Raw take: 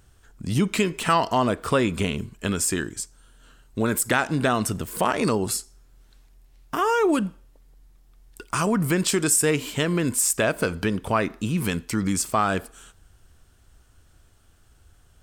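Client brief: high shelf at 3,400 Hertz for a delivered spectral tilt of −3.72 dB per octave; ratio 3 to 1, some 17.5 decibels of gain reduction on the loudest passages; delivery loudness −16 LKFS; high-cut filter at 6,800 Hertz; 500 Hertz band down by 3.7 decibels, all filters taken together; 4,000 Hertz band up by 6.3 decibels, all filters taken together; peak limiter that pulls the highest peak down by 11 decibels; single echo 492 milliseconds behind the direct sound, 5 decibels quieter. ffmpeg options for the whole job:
ffmpeg -i in.wav -af "lowpass=6800,equalizer=frequency=500:width_type=o:gain=-5,highshelf=frequency=3400:gain=3,equalizer=frequency=4000:width_type=o:gain=7,acompressor=threshold=-42dB:ratio=3,alimiter=level_in=7.5dB:limit=-24dB:level=0:latency=1,volume=-7.5dB,aecho=1:1:492:0.562,volume=25.5dB" out.wav

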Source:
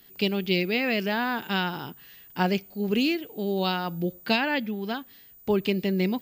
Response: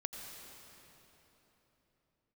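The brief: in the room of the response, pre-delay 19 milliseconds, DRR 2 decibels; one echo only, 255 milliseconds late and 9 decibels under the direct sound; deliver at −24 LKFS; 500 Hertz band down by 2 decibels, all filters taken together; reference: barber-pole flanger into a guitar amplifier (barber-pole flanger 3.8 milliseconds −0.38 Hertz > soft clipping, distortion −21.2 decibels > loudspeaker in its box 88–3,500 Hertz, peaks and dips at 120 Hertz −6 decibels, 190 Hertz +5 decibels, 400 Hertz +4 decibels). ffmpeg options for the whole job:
-filter_complex "[0:a]equalizer=frequency=500:width_type=o:gain=-7,aecho=1:1:255:0.355,asplit=2[link_01][link_02];[1:a]atrim=start_sample=2205,adelay=19[link_03];[link_02][link_03]afir=irnorm=-1:irlink=0,volume=-1.5dB[link_04];[link_01][link_04]amix=inputs=2:normalize=0,asplit=2[link_05][link_06];[link_06]adelay=3.8,afreqshift=-0.38[link_07];[link_05][link_07]amix=inputs=2:normalize=1,asoftclip=threshold=-18dB,highpass=88,equalizer=frequency=120:width_type=q:width=4:gain=-6,equalizer=frequency=190:width_type=q:width=4:gain=5,equalizer=frequency=400:width_type=q:width=4:gain=4,lowpass=frequency=3500:width=0.5412,lowpass=frequency=3500:width=1.3066,volume=5.5dB"

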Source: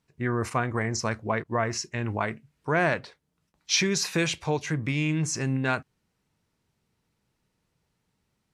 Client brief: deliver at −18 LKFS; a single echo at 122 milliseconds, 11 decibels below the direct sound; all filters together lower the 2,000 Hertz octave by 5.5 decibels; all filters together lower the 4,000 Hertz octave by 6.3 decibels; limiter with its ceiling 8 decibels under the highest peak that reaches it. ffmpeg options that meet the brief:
ffmpeg -i in.wav -af "equalizer=frequency=2000:width_type=o:gain=-5.5,equalizer=frequency=4000:width_type=o:gain=-7.5,alimiter=limit=-22dB:level=0:latency=1,aecho=1:1:122:0.282,volume=14dB" out.wav

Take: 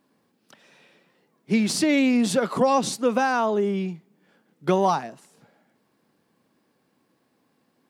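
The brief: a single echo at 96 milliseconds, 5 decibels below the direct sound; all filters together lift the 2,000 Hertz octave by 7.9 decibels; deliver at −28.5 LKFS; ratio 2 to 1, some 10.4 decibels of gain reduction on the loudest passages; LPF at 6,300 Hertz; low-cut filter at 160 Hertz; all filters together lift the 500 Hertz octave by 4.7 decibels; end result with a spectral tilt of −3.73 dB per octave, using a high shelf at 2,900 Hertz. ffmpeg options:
ffmpeg -i in.wav -af "highpass=160,lowpass=6300,equalizer=frequency=500:width_type=o:gain=5,equalizer=frequency=2000:width_type=o:gain=7.5,highshelf=frequency=2900:gain=6.5,acompressor=threshold=-31dB:ratio=2,aecho=1:1:96:0.562,volume=-1.5dB" out.wav

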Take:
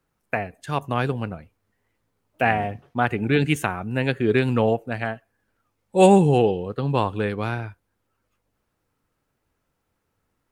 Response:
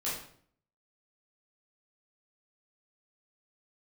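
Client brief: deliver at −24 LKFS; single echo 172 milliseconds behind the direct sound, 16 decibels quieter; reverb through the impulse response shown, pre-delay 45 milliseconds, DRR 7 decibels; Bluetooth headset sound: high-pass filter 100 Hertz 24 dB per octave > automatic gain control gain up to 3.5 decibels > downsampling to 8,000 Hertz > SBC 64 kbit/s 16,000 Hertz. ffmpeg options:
-filter_complex "[0:a]aecho=1:1:172:0.158,asplit=2[link_01][link_02];[1:a]atrim=start_sample=2205,adelay=45[link_03];[link_02][link_03]afir=irnorm=-1:irlink=0,volume=-11.5dB[link_04];[link_01][link_04]amix=inputs=2:normalize=0,highpass=frequency=100:width=0.5412,highpass=frequency=100:width=1.3066,dynaudnorm=maxgain=3.5dB,aresample=8000,aresample=44100,volume=-2dB" -ar 16000 -c:a sbc -b:a 64k

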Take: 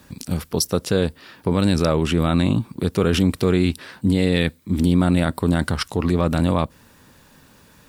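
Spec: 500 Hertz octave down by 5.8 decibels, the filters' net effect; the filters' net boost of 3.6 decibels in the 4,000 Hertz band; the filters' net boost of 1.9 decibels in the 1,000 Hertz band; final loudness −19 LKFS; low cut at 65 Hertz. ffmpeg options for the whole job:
ffmpeg -i in.wav -af "highpass=65,equalizer=frequency=500:width_type=o:gain=-8.5,equalizer=frequency=1000:width_type=o:gain=4.5,equalizer=frequency=4000:width_type=o:gain=4.5,volume=3dB" out.wav

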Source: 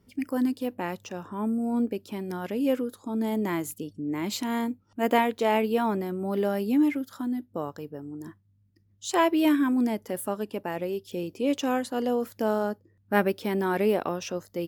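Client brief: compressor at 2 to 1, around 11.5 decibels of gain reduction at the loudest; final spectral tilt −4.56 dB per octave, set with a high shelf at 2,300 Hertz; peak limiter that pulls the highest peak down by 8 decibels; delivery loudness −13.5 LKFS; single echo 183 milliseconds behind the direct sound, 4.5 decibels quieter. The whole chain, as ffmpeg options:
ffmpeg -i in.wav -af "highshelf=frequency=2300:gain=6,acompressor=threshold=-39dB:ratio=2,alimiter=level_in=4dB:limit=-24dB:level=0:latency=1,volume=-4dB,aecho=1:1:183:0.596,volume=23dB" out.wav

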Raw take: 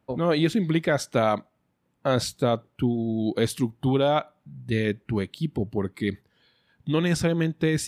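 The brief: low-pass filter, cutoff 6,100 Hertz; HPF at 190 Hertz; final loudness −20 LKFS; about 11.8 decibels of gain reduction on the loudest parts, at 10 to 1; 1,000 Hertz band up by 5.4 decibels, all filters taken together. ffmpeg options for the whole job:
ffmpeg -i in.wav -af "highpass=190,lowpass=6100,equalizer=frequency=1000:width_type=o:gain=8,acompressor=threshold=-27dB:ratio=10,volume=13.5dB" out.wav

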